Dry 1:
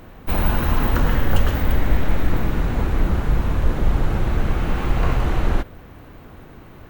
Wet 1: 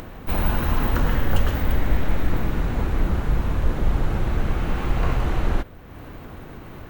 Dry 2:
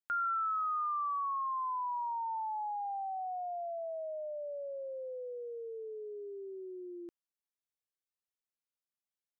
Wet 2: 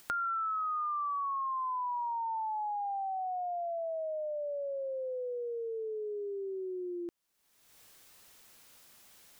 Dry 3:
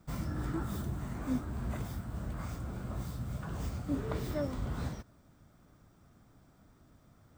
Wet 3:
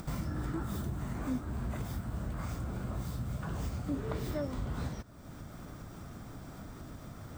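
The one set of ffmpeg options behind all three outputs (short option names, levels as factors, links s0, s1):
-af "acompressor=mode=upward:threshold=0.0447:ratio=2.5,volume=0.75"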